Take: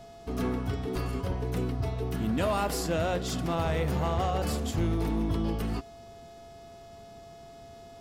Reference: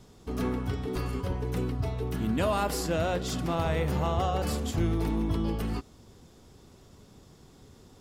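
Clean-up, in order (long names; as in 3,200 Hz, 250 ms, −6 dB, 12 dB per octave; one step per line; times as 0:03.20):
clipped peaks rebuilt −22 dBFS
hum removal 423 Hz, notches 14
notch filter 680 Hz, Q 30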